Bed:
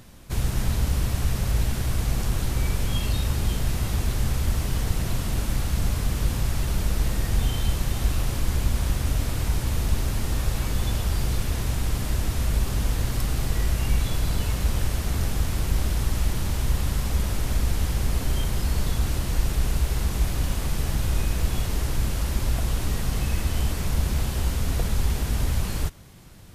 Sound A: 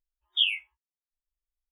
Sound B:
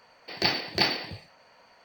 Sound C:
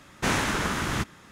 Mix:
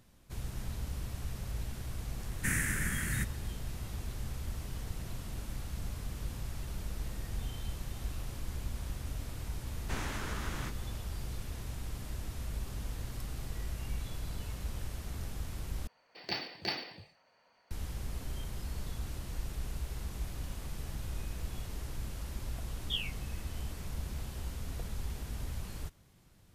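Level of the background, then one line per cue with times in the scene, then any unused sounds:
bed -15 dB
2.21 s: add C -5 dB + FFT filter 170 Hz 0 dB, 720 Hz -23 dB, 1.1 kHz -19 dB, 1.8 kHz +4 dB, 4 kHz -20 dB, 8.9 kHz +9 dB
9.67 s: add C -7.5 dB + compression 2:1, threshold -34 dBFS
15.87 s: replace with B -11.5 dB
22.53 s: add A -12 dB

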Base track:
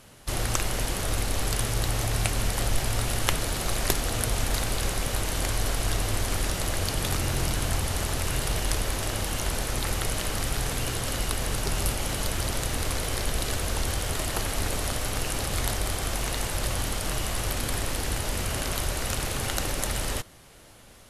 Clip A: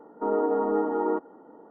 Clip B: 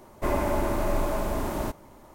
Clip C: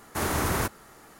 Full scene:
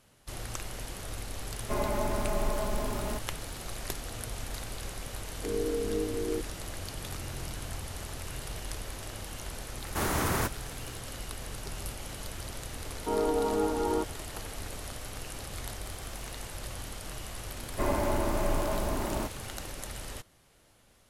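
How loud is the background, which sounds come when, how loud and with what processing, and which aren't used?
base track -11.5 dB
1.47 s: add B -7.5 dB + comb 4.8 ms, depth 75%
5.22 s: add A -6 dB + steep low-pass 570 Hz 96 dB/octave
9.80 s: add C -2.5 dB
12.85 s: add A -3.5 dB
15.66 s: add C -14 dB + amplifier tone stack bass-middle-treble 6-0-2
17.56 s: add B -3 dB

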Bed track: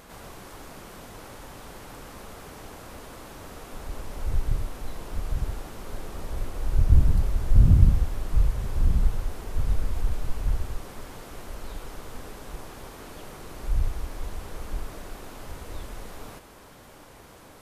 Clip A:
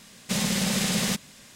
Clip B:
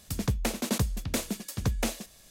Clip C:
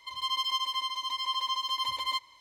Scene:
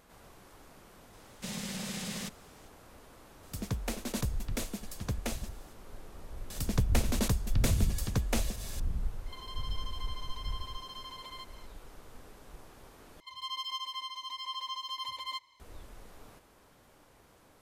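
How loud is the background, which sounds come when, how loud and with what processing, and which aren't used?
bed track -12 dB
1.13 s: add A -13 dB
3.43 s: add B -6.5 dB
6.50 s: add B -2.5 dB + upward compressor 4:1, threshold -32 dBFS
9.26 s: add C -1 dB + compression 4:1, threshold -44 dBFS
13.20 s: replace with C -7.5 dB

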